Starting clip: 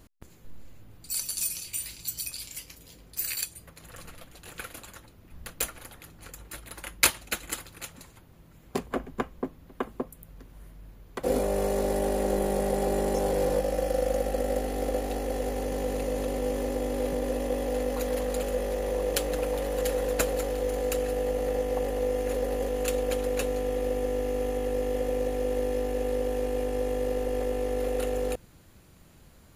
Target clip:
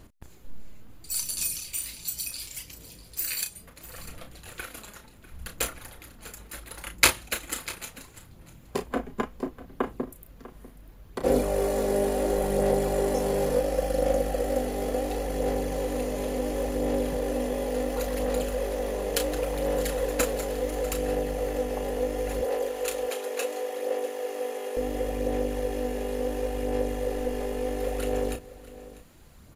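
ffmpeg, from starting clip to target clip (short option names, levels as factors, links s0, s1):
-filter_complex "[0:a]asettb=1/sr,asplit=3[s0][s1][s2];[s0]atrim=end=22.414[s3];[s1]atrim=start=22.41:end=24.77,asetpts=PTS-STARTPTS,afade=t=in:d=0.004:c=qsin,afade=t=out:st=2.356:d=0.004:c=qsin,highpass=f=380:w=0.5412,highpass=f=380:w=1.3066[s4];[s2]atrim=start=24.766[s5];[s3][s4]acrossfade=d=0.004:c1=hsin:c2=qsin[s6];[s6][s5]acrossfade=d=0.004:c1=qsin:c2=hsin,aphaser=in_gain=1:out_gain=1:delay=4.9:decay=0.36:speed=0.71:type=sinusoidal,asplit=2[s7][s8];[s8]adelay=33,volume=0.398[s9];[s7][s9]amix=inputs=2:normalize=0,aecho=1:1:646:0.133"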